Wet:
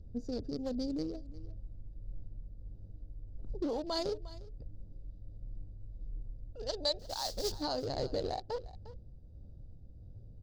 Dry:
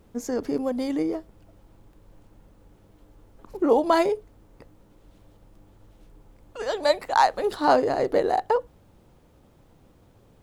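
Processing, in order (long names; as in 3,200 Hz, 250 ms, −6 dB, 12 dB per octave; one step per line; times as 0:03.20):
adaptive Wiener filter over 41 samples
0:06.99–0:07.52: noise that follows the level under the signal 13 dB
brickwall limiter −17 dBFS, peak gain reduction 11.5 dB
drawn EQ curve 110 Hz 0 dB, 160 Hz −6 dB, 380 Hz −12 dB, 590 Hz −8 dB, 860 Hz −12 dB, 2,300 Hz −15 dB, 4,700 Hz +10 dB, 9,900 Hz −10 dB
in parallel at −3 dB: downward compressor, threshold −46 dBFS, peak gain reduction 17 dB
on the sum: low-shelf EQ 97 Hz +8.5 dB
on a send: single-tap delay 354 ms −19 dB
on the sum: shaped tremolo triangle 1.5 Hz, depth 35%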